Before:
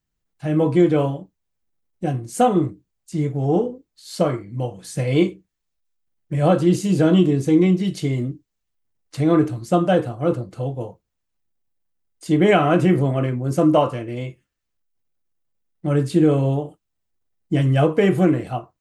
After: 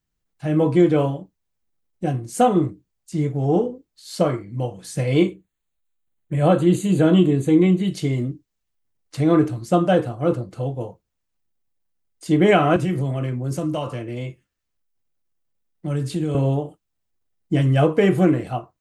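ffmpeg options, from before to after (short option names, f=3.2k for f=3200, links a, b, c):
-filter_complex "[0:a]asettb=1/sr,asplit=3[a][b][c];[a]atrim=end=5.224[d];[b]atrim=start=5.22:end=7.92,asetpts=PTS-STARTPTS,afade=t=in:d=0.004:c=qsin,afade=t=out:st=2.696:d=0.004:c=qsin,asuperstop=centerf=5300:order=4:qfactor=2.6[e];[c]atrim=start=7.916[f];[d][e]acrossfade=d=0.004:c1=hsin:c2=qsin[g];[g][f]acrossfade=d=0.004:c1=qsin:c2=hsin,asettb=1/sr,asplit=3[h][i][j];[h]atrim=end=12.764[k];[i]atrim=start=12.76:end=16.35,asetpts=PTS-STARTPTS,afade=t=in:d=0.004:c=qsin,afade=t=out:st=3.586:d=0.004:c=qsin,acrossover=split=140|3000[l][m][n];[m]acompressor=threshold=-28dB:ratio=2.5:attack=3.2:release=140:knee=2.83:detection=peak[o];[l][o][n]amix=inputs=3:normalize=0[p];[j]atrim=start=16.346[q];[k][p]acrossfade=d=0.004:c1=hsin:c2=qsin[r];[r][q]acrossfade=d=0.004:c1=qsin:c2=hsin"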